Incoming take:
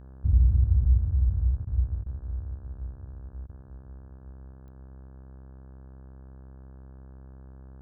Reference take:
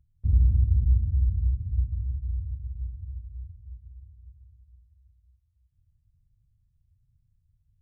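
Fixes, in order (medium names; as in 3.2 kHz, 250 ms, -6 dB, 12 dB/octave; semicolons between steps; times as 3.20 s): de-click; de-hum 65.7 Hz, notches 26; interpolate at 1.65/2.04/3.47 s, 20 ms; gain correction +3.5 dB, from 1.96 s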